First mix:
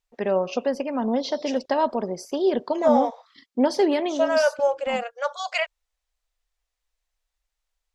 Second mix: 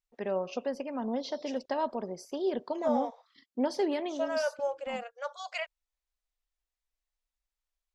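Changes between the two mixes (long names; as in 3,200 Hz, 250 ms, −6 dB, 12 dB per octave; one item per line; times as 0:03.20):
first voice −9.0 dB
second voice −10.5 dB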